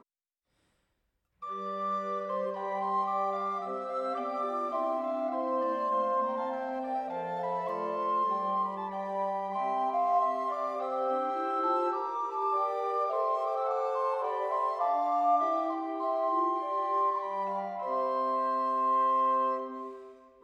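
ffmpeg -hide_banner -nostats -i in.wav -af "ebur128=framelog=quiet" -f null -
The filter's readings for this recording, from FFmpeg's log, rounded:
Integrated loudness:
  I:         -30.7 LUFS
  Threshold: -40.8 LUFS
Loudness range:
  LRA:         3.1 LU
  Threshold: -50.9 LUFS
  LRA low:   -32.5 LUFS
  LRA high:  -29.5 LUFS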